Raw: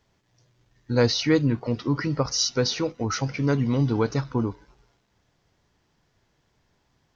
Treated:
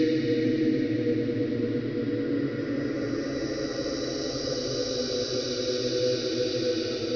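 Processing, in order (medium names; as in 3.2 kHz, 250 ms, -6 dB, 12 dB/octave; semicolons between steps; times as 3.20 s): steep low-pass 5.6 kHz 48 dB/octave; treble shelf 3.4 kHz -9.5 dB; static phaser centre 390 Hz, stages 4; Paulstretch 4.8×, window 1.00 s, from 1.39 s; echo with a slow build-up 112 ms, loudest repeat 5, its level -15 dB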